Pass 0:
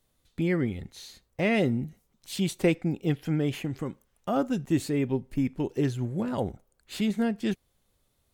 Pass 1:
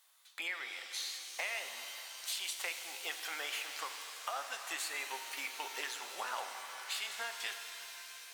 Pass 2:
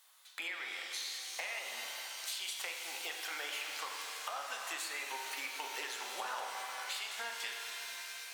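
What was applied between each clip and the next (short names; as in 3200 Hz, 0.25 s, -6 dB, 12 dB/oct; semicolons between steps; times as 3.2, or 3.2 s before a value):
HPF 910 Hz 24 dB/oct; compressor, threshold -46 dBFS, peak gain reduction 17 dB; shimmer reverb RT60 3.6 s, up +7 st, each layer -2 dB, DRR 6 dB; gain +8.5 dB
compressor 2.5:1, threshold -43 dBFS, peak gain reduction 7 dB; HPF 120 Hz; on a send at -4 dB: reverb RT60 1.0 s, pre-delay 30 ms; on the sum: gain +3 dB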